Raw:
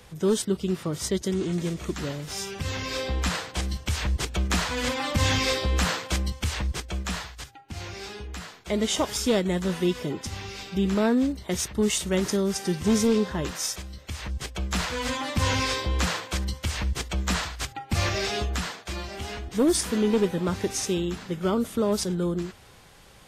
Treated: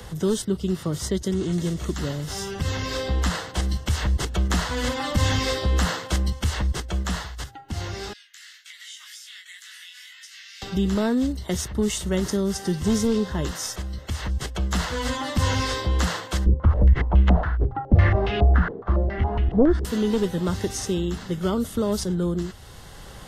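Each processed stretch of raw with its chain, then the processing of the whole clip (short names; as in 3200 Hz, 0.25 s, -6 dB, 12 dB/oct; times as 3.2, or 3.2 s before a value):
8.13–10.62 steep high-pass 1800 Hz + compressor 3:1, threshold -45 dBFS + chorus 1.9 Hz, delay 17.5 ms, depth 6.1 ms
16.46–19.85 tilt -3 dB/oct + stepped low-pass 7.2 Hz 420–2600 Hz
whole clip: low shelf 120 Hz +5.5 dB; notch 2400 Hz, Q 5.1; three-band squash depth 40%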